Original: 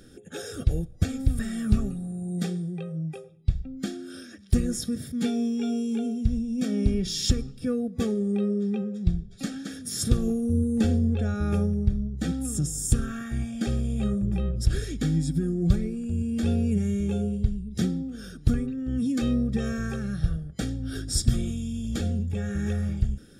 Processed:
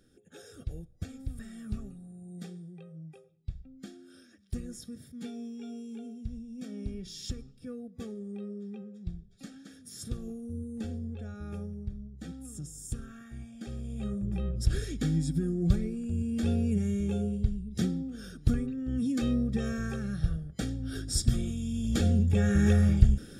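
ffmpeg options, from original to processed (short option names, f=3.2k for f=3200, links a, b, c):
-af "volume=5dB,afade=t=in:st=13.65:d=1.05:silence=0.298538,afade=t=in:st=21.55:d=0.89:silence=0.375837"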